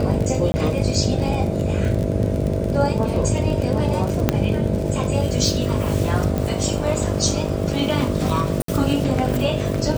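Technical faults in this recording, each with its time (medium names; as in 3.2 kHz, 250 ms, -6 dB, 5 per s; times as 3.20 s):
buzz 50 Hz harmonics 13 -25 dBFS
crackle 35 per s -23 dBFS
0.52–0.54 s: dropout 20 ms
4.29 s: pop -2 dBFS
6.38 s: pop
8.62–8.68 s: dropout 63 ms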